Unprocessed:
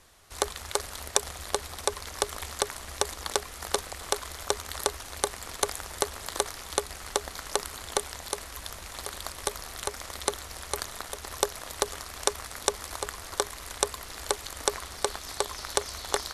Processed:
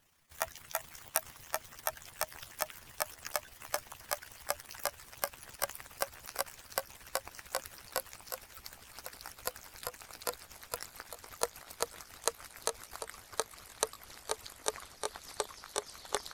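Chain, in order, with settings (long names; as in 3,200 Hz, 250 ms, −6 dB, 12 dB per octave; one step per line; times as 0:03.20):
pitch glide at a constant tempo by +8.5 semitones ending unshifted
harmonic and percussive parts rebalanced harmonic −17 dB
level −5.5 dB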